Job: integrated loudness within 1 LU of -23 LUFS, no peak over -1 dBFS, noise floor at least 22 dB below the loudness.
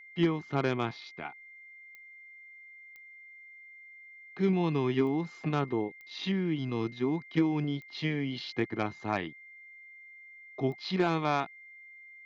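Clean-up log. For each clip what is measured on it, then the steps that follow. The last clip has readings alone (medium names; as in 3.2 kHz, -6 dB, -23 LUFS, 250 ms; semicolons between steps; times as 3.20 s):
clicks found 6; steady tone 2.1 kHz; tone level -49 dBFS; loudness -31.5 LUFS; peak level -17.0 dBFS; loudness target -23.0 LUFS
-> de-click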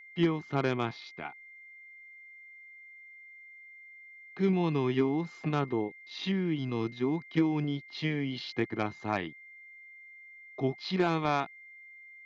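clicks found 0; steady tone 2.1 kHz; tone level -49 dBFS
-> band-stop 2.1 kHz, Q 30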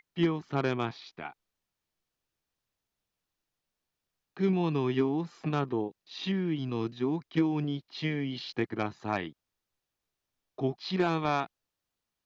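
steady tone not found; loudness -31.5 LUFS; peak level -16.0 dBFS; loudness target -23.0 LUFS
-> trim +8.5 dB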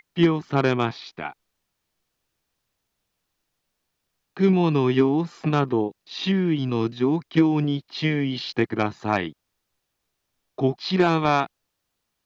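loudness -23.0 LUFS; peak level -7.5 dBFS; noise floor -79 dBFS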